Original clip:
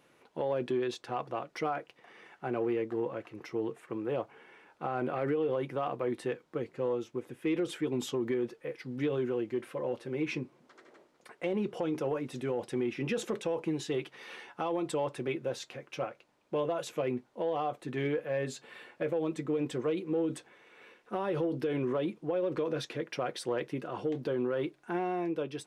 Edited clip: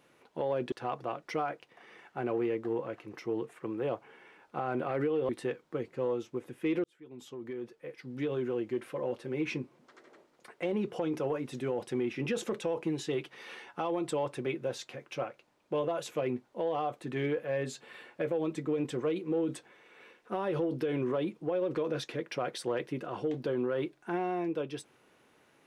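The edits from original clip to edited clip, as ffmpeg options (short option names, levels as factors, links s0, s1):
-filter_complex "[0:a]asplit=4[s0][s1][s2][s3];[s0]atrim=end=0.722[s4];[s1]atrim=start=0.988:end=5.562[s5];[s2]atrim=start=6.098:end=7.65,asetpts=PTS-STARTPTS,afade=t=out:st=1.548:d=0.004:c=hsin[s6];[s3]atrim=start=7.65,asetpts=PTS-STARTPTS,afade=t=in:d=1.82[s7];[s4][s5]acrossfade=d=0.004:c1=hsin:c2=hsin[s8];[s6][s7]concat=n=2:v=0:a=1[s9];[s8][s9]acrossfade=d=0.004:c1=hsin:c2=hsin"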